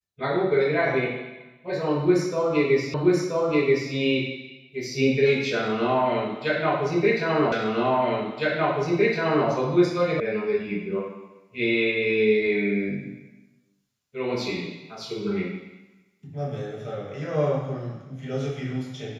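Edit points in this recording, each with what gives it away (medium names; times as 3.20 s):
2.94 s: repeat of the last 0.98 s
7.52 s: repeat of the last 1.96 s
10.20 s: sound stops dead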